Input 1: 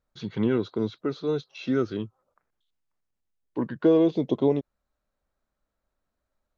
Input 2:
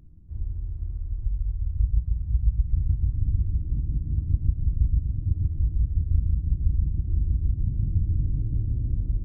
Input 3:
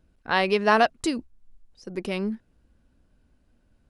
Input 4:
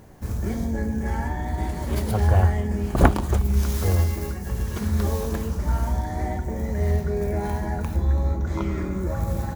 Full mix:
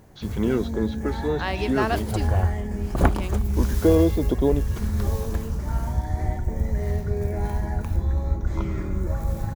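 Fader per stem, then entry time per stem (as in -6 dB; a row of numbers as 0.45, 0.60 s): +1.0, -3.5, -6.5, -3.5 dB; 0.00, 1.80, 1.10, 0.00 s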